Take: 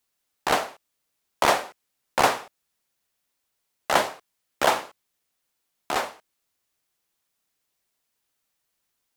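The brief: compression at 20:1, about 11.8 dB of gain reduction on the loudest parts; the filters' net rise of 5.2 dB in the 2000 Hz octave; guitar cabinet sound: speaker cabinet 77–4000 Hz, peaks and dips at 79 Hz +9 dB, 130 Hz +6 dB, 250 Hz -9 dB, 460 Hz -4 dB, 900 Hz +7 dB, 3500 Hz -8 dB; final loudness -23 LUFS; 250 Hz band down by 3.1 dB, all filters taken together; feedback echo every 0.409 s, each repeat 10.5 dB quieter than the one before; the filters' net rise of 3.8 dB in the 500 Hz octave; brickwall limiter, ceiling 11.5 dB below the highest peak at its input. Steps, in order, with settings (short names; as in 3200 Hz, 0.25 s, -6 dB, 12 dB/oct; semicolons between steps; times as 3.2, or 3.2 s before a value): bell 250 Hz -3.5 dB; bell 500 Hz +6 dB; bell 2000 Hz +6.5 dB; compressor 20:1, threshold -22 dBFS; limiter -16.5 dBFS; speaker cabinet 77–4000 Hz, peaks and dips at 79 Hz +9 dB, 130 Hz +6 dB, 250 Hz -9 dB, 460 Hz -4 dB, 900 Hz +7 dB, 3500 Hz -8 dB; feedback echo 0.409 s, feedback 30%, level -10.5 dB; gain +11 dB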